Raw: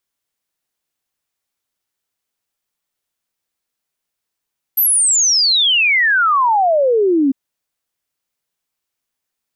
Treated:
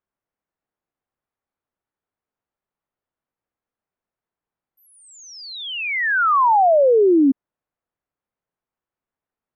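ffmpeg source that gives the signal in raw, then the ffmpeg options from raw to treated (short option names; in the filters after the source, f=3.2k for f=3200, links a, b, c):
-f lavfi -i "aevalsrc='0.299*clip(min(t,2.55-t)/0.01,0,1)*sin(2*PI*13000*2.55/log(260/13000)*(exp(log(260/13000)*t/2.55)-1))':d=2.55:s=44100"
-af "lowpass=1.3k"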